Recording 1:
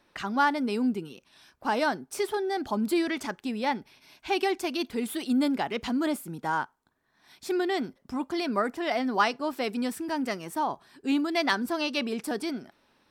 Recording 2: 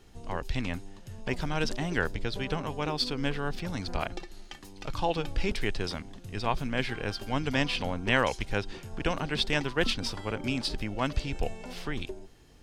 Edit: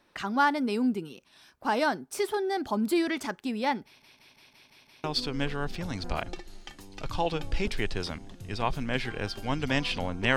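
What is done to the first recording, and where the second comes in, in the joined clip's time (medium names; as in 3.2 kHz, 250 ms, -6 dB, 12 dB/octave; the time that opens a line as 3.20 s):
recording 1
3.85 s: stutter in place 0.17 s, 7 plays
5.04 s: go over to recording 2 from 2.88 s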